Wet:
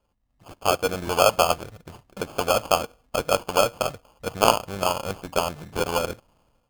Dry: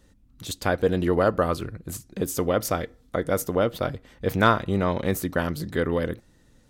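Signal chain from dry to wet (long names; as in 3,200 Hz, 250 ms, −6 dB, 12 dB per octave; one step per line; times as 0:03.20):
running median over 25 samples
automatic gain control gain up to 11.5 dB
low shelf with overshoot 500 Hz −13.5 dB, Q 1.5
decimation without filtering 23×
level −2.5 dB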